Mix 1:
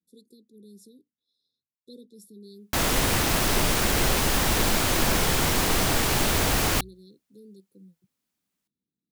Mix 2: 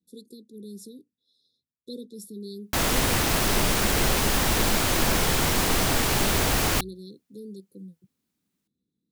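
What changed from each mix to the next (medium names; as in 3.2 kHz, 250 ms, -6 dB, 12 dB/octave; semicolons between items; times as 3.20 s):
speech +8.5 dB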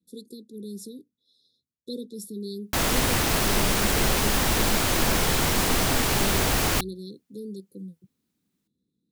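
speech +3.5 dB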